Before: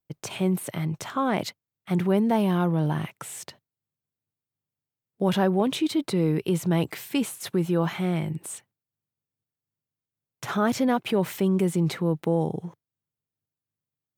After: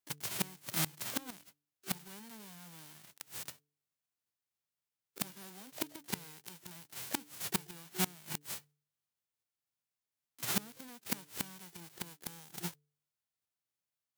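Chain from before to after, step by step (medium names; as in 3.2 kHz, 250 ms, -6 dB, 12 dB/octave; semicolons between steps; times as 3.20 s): formants flattened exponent 0.1; inverted gate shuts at -14 dBFS, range -26 dB; harmony voices +12 st -12 dB; de-hum 146.8 Hz, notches 3; trim -3.5 dB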